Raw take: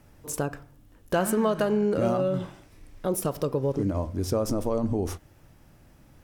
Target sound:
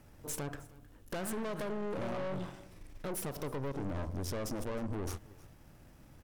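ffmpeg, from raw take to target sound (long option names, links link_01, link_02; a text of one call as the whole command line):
ffmpeg -i in.wav -af "acompressor=threshold=-26dB:ratio=6,aeval=exprs='(tanh(63.1*val(0)+0.65)-tanh(0.65))/63.1':channel_layout=same,aecho=1:1:313:0.0841,volume=1dB" out.wav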